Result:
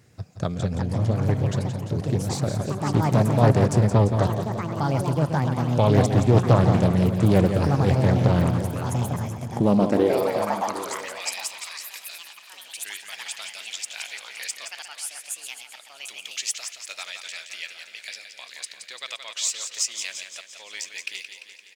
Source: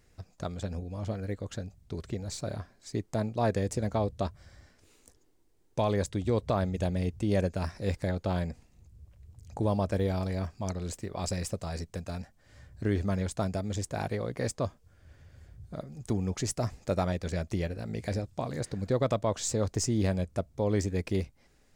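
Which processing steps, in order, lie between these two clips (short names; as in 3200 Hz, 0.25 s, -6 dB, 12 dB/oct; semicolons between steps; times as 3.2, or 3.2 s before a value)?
on a send: feedback echo 0.172 s, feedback 58%, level -8 dB; on the sum: echoes that change speed 0.469 s, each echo +5 st, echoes 2, each echo -6 dB; high-pass sweep 120 Hz -> 2700 Hz, 9.45–11.37; outdoor echo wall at 130 m, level -15 dB; Doppler distortion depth 0.4 ms; gain +6.5 dB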